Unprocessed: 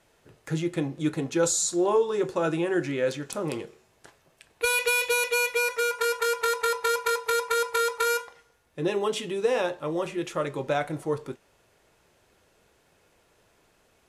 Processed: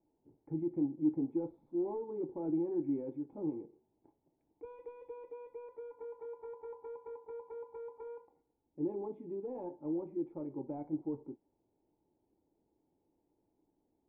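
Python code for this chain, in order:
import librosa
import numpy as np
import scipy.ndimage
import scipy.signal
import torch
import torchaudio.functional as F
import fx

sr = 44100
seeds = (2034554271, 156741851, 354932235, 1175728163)

p1 = fx.level_steps(x, sr, step_db=15)
p2 = x + (p1 * librosa.db_to_amplitude(0.0))
p3 = 10.0 ** (-15.5 / 20.0) * np.tanh(p2 / 10.0 ** (-15.5 / 20.0))
p4 = fx.formant_cascade(p3, sr, vowel='u')
y = p4 * librosa.db_to_amplitude(-4.0)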